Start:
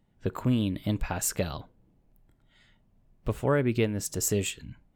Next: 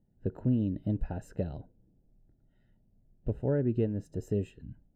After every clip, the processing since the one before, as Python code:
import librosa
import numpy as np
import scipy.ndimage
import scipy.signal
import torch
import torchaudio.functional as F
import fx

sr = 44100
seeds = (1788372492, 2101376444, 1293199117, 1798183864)

y = scipy.signal.lfilter(np.full(39, 1.0 / 39), 1.0, x)
y = y * 10.0 ** (-1.5 / 20.0)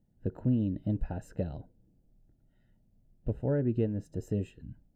y = fx.notch(x, sr, hz=400.0, q=12.0)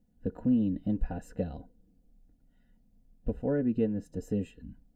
y = x + 0.63 * np.pad(x, (int(4.1 * sr / 1000.0), 0))[:len(x)]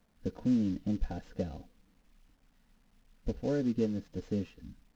y = fx.cvsd(x, sr, bps=32000)
y = fx.quant_dither(y, sr, seeds[0], bits=12, dither='none')
y = y * 10.0 ** (-2.0 / 20.0)